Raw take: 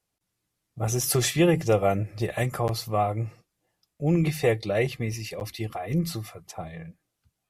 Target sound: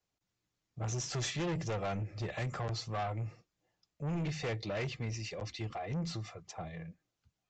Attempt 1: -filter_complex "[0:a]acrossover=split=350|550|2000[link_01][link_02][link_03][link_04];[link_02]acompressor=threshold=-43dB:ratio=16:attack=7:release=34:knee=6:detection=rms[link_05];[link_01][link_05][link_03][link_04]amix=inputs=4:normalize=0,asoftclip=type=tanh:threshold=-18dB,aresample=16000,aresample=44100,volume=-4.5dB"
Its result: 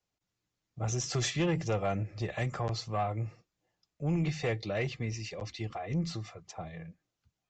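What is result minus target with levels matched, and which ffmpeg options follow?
soft clipping: distortion −10 dB
-filter_complex "[0:a]acrossover=split=350|550|2000[link_01][link_02][link_03][link_04];[link_02]acompressor=threshold=-43dB:ratio=16:attack=7:release=34:knee=6:detection=rms[link_05];[link_01][link_05][link_03][link_04]amix=inputs=4:normalize=0,asoftclip=type=tanh:threshold=-27.5dB,aresample=16000,aresample=44100,volume=-4.5dB"

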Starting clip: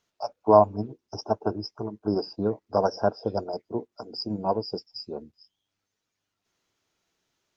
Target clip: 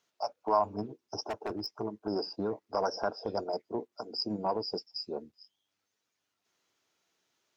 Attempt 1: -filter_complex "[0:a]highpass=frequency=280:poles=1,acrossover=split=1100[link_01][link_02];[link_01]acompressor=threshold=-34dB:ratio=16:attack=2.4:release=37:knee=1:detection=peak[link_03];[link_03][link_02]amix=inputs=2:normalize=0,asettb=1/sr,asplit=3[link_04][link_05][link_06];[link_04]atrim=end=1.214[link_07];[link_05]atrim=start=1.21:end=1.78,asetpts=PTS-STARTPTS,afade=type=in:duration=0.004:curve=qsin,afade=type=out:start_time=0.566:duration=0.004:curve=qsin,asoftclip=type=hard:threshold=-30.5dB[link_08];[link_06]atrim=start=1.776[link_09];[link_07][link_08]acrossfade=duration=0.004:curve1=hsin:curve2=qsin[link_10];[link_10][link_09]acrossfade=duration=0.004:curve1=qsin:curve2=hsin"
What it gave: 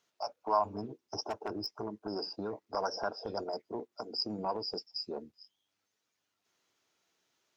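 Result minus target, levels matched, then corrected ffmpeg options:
downward compressor: peak gain reduction +5.5 dB
-filter_complex "[0:a]highpass=frequency=280:poles=1,acrossover=split=1100[link_01][link_02];[link_01]acompressor=threshold=-28dB:ratio=16:attack=2.4:release=37:knee=1:detection=peak[link_03];[link_03][link_02]amix=inputs=2:normalize=0,asettb=1/sr,asplit=3[link_04][link_05][link_06];[link_04]atrim=end=1.214[link_07];[link_05]atrim=start=1.21:end=1.78,asetpts=PTS-STARTPTS,afade=type=in:duration=0.004:curve=qsin,afade=type=out:start_time=0.566:duration=0.004:curve=qsin,asoftclip=type=hard:threshold=-30.5dB[link_08];[link_06]atrim=start=1.776[link_09];[link_07][link_08]acrossfade=duration=0.004:curve1=hsin:curve2=qsin[link_10];[link_10][link_09]acrossfade=duration=0.004:curve1=qsin:curve2=hsin"

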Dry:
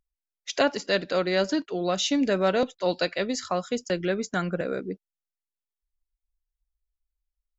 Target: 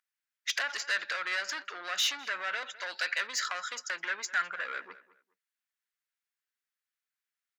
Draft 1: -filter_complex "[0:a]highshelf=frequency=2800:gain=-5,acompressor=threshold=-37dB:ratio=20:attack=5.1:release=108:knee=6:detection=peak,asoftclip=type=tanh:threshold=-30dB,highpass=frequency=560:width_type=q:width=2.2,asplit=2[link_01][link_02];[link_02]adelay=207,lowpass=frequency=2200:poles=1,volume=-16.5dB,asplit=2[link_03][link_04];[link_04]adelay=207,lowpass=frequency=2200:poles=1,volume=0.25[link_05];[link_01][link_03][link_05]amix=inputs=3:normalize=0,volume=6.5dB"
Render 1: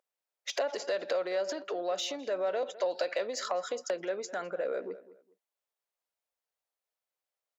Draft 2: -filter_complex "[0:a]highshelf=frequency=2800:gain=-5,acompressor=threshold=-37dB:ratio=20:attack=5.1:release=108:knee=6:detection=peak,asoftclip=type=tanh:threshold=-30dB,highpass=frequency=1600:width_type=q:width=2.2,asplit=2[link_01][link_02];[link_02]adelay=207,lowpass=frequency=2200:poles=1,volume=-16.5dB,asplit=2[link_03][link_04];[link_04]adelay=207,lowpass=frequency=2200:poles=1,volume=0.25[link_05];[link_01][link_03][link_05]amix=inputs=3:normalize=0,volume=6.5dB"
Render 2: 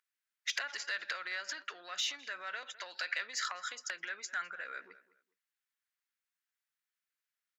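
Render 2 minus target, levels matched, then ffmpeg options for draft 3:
downward compressor: peak gain reduction +11 dB
-filter_complex "[0:a]highshelf=frequency=2800:gain=-5,acompressor=threshold=-25.5dB:ratio=20:attack=5.1:release=108:knee=6:detection=peak,asoftclip=type=tanh:threshold=-30dB,highpass=frequency=1600:width_type=q:width=2.2,asplit=2[link_01][link_02];[link_02]adelay=207,lowpass=frequency=2200:poles=1,volume=-16.5dB,asplit=2[link_03][link_04];[link_04]adelay=207,lowpass=frequency=2200:poles=1,volume=0.25[link_05];[link_01][link_03][link_05]amix=inputs=3:normalize=0,volume=6.5dB"

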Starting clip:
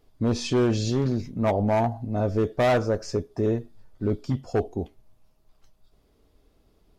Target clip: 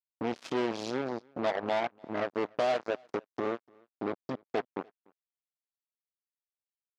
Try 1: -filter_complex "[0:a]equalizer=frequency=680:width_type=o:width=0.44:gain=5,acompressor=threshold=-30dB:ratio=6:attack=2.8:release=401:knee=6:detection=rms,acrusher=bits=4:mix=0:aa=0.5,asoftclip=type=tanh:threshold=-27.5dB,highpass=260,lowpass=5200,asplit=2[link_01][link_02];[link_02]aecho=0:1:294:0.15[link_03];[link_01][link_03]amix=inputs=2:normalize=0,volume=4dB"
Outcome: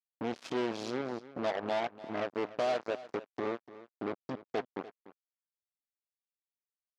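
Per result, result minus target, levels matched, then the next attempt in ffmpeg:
soft clipping: distortion +17 dB; echo-to-direct +12 dB
-filter_complex "[0:a]equalizer=frequency=680:width_type=o:width=0.44:gain=5,acompressor=threshold=-30dB:ratio=6:attack=2.8:release=401:knee=6:detection=rms,acrusher=bits=4:mix=0:aa=0.5,asoftclip=type=tanh:threshold=-17.5dB,highpass=260,lowpass=5200,asplit=2[link_01][link_02];[link_02]aecho=0:1:294:0.15[link_03];[link_01][link_03]amix=inputs=2:normalize=0,volume=4dB"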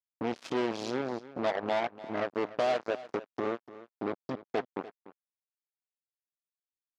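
echo-to-direct +12 dB
-filter_complex "[0:a]equalizer=frequency=680:width_type=o:width=0.44:gain=5,acompressor=threshold=-30dB:ratio=6:attack=2.8:release=401:knee=6:detection=rms,acrusher=bits=4:mix=0:aa=0.5,asoftclip=type=tanh:threshold=-17.5dB,highpass=260,lowpass=5200,asplit=2[link_01][link_02];[link_02]aecho=0:1:294:0.0376[link_03];[link_01][link_03]amix=inputs=2:normalize=0,volume=4dB"

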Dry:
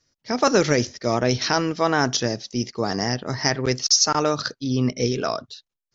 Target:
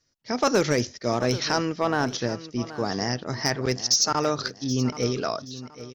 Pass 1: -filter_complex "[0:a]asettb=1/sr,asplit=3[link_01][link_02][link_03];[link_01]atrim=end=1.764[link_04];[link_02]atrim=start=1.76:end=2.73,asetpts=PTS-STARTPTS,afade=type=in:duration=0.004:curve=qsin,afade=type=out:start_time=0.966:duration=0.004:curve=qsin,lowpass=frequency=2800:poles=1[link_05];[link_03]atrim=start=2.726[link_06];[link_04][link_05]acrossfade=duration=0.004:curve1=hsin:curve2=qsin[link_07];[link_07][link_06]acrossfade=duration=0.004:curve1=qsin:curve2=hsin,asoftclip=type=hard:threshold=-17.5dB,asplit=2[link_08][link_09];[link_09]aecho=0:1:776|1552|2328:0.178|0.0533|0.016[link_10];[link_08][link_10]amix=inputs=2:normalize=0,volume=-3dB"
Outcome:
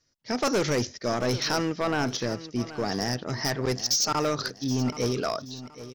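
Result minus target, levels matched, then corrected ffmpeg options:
hard clipping: distortion +13 dB
-filter_complex "[0:a]asettb=1/sr,asplit=3[link_01][link_02][link_03];[link_01]atrim=end=1.764[link_04];[link_02]atrim=start=1.76:end=2.73,asetpts=PTS-STARTPTS,afade=type=in:duration=0.004:curve=qsin,afade=type=out:start_time=0.966:duration=0.004:curve=qsin,lowpass=frequency=2800:poles=1[link_05];[link_03]atrim=start=2.726[link_06];[link_04][link_05]acrossfade=duration=0.004:curve1=hsin:curve2=qsin[link_07];[link_07][link_06]acrossfade=duration=0.004:curve1=qsin:curve2=hsin,asoftclip=type=hard:threshold=-10dB,asplit=2[link_08][link_09];[link_09]aecho=0:1:776|1552|2328:0.178|0.0533|0.016[link_10];[link_08][link_10]amix=inputs=2:normalize=0,volume=-3dB"

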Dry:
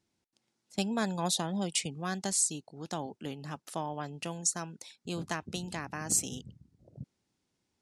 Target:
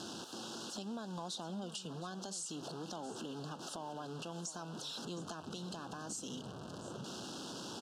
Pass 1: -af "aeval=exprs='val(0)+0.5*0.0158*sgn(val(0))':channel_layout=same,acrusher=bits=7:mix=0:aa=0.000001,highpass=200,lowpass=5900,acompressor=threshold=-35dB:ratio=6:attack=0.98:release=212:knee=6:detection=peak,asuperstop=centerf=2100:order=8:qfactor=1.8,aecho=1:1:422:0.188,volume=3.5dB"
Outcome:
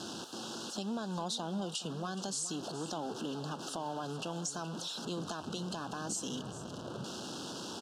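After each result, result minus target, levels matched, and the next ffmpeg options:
echo 293 ms early; downward compressor: peak gain reduction −6 dB
-af "aeval=exprs='val(0)+0.5*0.0158*sgn(val(0))':channel_layout=same,acrusher=bits=7:mix=0:aa=0.000001,highpass=200,lowpass=5900,acompressor=threshold=-35dB:ratio=6:attack=0.98:release=212:knee=6:detection=peak,asuperstop=centerf=2100:order=8:qfactor=1.8,aecho=1:1:715:0.188,volume=3.5dB"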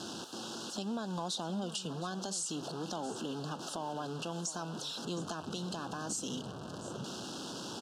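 downward compressor: peak gain reduction −6 dB
-af "aeval=exprs='val(0)+0.5*0.0158*sgn(val(0))':channel_layout=same,acrusher=bits=7:mix=0:aa=0.000001,highpass=200,lowpass=5900,acompressor=threshold=-42dB:ratio=6:attack=0.98:release=212:knee=6:detection=peak,asuperstop=centerf=2100:order=8:qfactor=1.8,aecho=1:1:715:0.188,volume=3.5dB"

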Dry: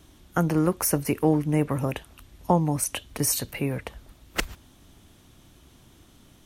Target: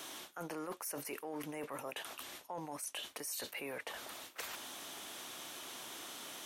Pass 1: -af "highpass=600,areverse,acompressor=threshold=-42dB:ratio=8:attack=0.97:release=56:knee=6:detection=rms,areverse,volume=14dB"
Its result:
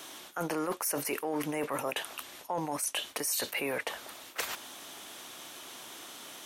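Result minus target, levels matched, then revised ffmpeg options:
downward compressor: peak gain reduction −10 dB
-af "highpass=600,areverse,acompressor=threshold=-53.5dB:ratio=8:attack=0.97:release=56:knee=6:detection=rms,areverse,volume=14dB"

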